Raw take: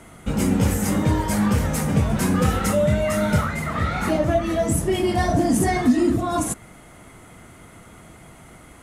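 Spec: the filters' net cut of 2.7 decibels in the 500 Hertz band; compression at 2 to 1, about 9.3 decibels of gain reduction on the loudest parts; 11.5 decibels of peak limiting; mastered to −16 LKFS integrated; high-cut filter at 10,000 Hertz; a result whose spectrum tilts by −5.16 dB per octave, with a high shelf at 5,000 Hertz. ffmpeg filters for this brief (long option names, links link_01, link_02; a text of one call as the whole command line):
ffmpeg -i in.wav -af "lowpass=10000,equalizer=frequency=500:width_type=o:gain=-4,highshelf=frequency=5000:gain=3.5,acompressor=threshold=-32dB:ratio=2,volume=21.5dB,alimiter=limit=-7dB:level=0:latency=1" out.wav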